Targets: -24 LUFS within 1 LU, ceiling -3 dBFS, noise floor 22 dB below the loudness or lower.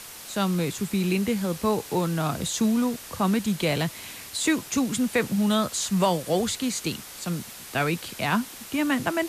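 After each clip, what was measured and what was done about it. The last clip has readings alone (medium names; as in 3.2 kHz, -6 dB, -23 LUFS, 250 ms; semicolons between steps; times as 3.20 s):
noise floor -42 dBFS; noise floor target -48 dBFS; loudness -26.0 LUFS; peak level -11.5 dBFS; loudness target -24.0 LUFS
-> noise reduction 6 dB, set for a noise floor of -42 dBFS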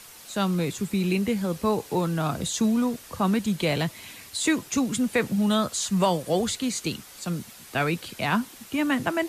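noise floor -47 dBFS; noise floor target -48 dBFS
-> noise reduction 6 dB, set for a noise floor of -47 dBFS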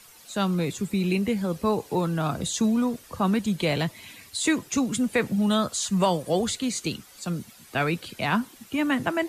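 noise floor -51 dBFS; loudness -26.0 LUFS; peak level -11.5 dBFS; loudness target -24.0 LUFS
-> trim +2 dB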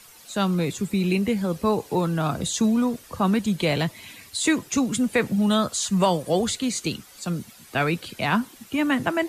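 loudness -24.0 LUFS; peak level -9.5 dBFS; noise floor -49 dBFS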